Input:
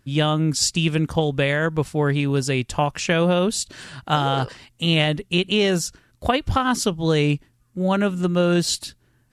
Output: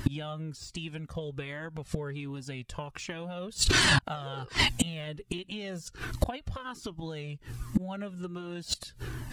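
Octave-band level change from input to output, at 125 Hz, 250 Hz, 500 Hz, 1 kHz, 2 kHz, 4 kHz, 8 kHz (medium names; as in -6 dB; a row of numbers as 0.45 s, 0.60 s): -12.0 dB, -13.5 dB, -17.0 dB, -13.5 dB, -6.0 dB, -7.0 dB, -8.0 dB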